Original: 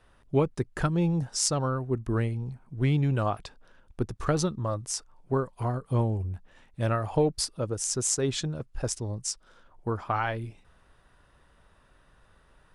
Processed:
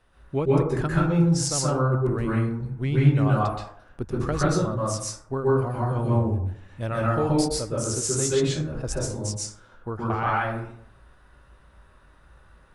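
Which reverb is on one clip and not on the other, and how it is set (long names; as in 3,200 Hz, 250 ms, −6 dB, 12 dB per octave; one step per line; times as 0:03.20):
dense smooth reverb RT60 0.65 s, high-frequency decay 0.4×, pre-delay 115 ms, DRR −6 dB
level −2.5 dB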